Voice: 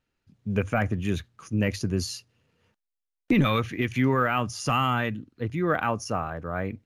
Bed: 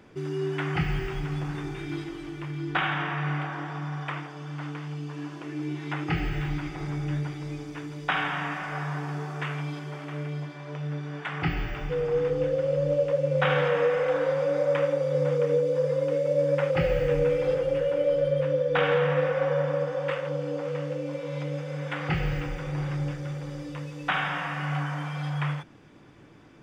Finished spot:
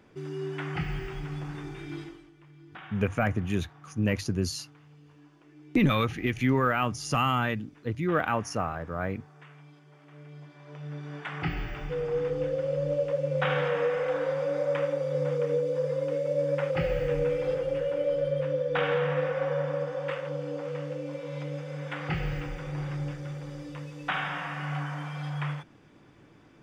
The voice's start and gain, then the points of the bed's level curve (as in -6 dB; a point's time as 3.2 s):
2.45 s, -1.5 dB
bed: 2.05 s -5 dB
2.32 s -19.5 dB
9.86 s -19.5 dB
11.13 s -3.5 dB